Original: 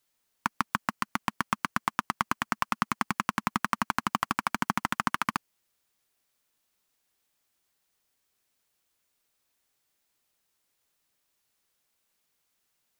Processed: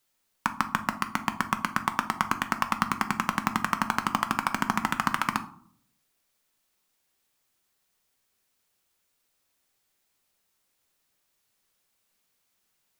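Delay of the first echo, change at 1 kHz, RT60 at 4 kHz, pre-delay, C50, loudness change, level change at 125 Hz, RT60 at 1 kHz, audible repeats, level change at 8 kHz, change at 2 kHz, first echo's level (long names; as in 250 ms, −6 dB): no echo audible, +2.0 dB, 0.30 s, 5 ms, 14.0 dB, +2.0 dB, +2.5 dB, 0.55 s, no echo audible, +2.0 dB, +2.0 dB, no echo audible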